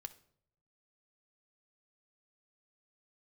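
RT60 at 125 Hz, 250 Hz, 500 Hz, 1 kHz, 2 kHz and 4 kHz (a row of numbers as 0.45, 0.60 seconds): 1.1, 0.80, 0.75, 0.55, 0.50, 0.45 seconds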